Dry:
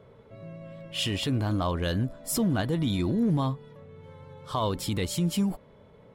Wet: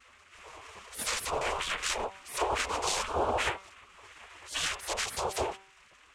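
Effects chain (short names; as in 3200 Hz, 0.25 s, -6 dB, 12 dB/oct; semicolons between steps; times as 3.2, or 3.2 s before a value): noise vocoder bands 4; spectral gate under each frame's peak -15 dB weak; de-hum 193 Hz, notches 19; gain +8 dB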